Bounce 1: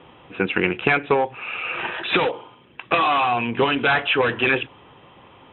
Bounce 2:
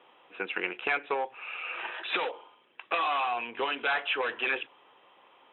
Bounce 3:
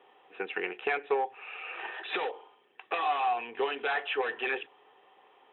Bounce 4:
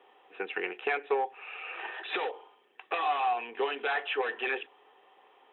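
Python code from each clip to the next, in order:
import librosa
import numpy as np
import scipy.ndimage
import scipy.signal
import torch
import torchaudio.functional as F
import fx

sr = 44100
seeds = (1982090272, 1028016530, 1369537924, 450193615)

y1 = scipy.signal.sosfilt(scipy.signal.butter(2, 490.0, 'highpass', fs=sr, output='sos'), x)
y1 = y1 * librosa.db_to_amplitude(-9.0)
y2 = fx.small_body(y1, sr, hz=(420.0, 760.0, 1800.0), ring_ms=45, db=11)
y2 = y2 * librosa.db_to_amplitude(-4.5)
y3 = scipy.signal.sosfilt(scipy.signal.butter(2, 200.0, 'highpass', fs=sr, output='sos'), y2)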